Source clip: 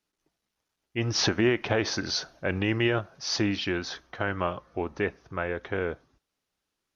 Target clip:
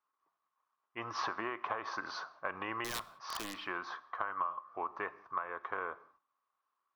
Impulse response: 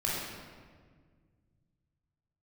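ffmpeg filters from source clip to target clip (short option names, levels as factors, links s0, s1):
-filter_complex "[0:a]bandpass=f=1100:t=q:w=9.6:csg=0,acompressor=threshold=0.00501:ratio=12,asettb=1/sr,asplit=3[s0][s1][s2];[s0]atrim=end=2.844[s3];[s1]atrim=start=2.84:end=3.56,asetpts=PTS-STARTPTS,afade=t=in:d=0.004:c=qsin,afade=t=out:st=0.716:d=0.004:c=qsin,aeval=exprs='(mod(178*val(0)+1,2)-1)/178':c=same[s4];[s2]atrim=start=3.556[s5];[s3][s4]acrossfade=d=0.004:c1=hsin:c2=qsin[s6];[s6][s5]acrossfade=d=0.004:c1=qsin:c2=hsin,asplit=2[s7][s8];[1:a]atrim=start_sample=2205,afade=t=out:st=0.25:d=0.01,atrim=end_sample=11466[s9];[s8][s9]afir=irnorm=-1:irlink=0,volume=0.0631[s10];[s7][s10]amix=inputs=2:normalize=0,volume=4.73"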